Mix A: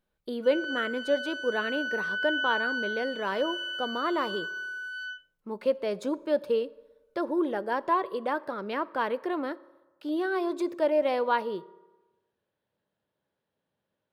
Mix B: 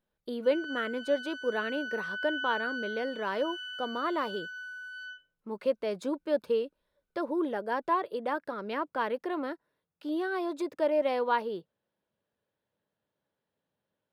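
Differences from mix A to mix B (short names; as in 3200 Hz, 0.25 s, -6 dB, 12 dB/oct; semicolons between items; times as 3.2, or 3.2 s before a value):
background -5.5 dB; reverb: off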